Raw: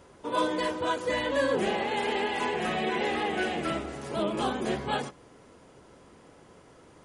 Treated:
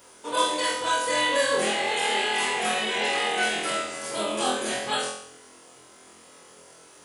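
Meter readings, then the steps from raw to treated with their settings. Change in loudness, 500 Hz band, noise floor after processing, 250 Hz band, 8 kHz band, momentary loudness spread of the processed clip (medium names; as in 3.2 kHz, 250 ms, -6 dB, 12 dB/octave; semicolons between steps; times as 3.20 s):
+4.5 dB, +1.0 dB, -52 dBFS, -3.5 dB, +15.5 dB, 6 LU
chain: RIAA curve recording; flutter echo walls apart 4 m, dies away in 0.64 s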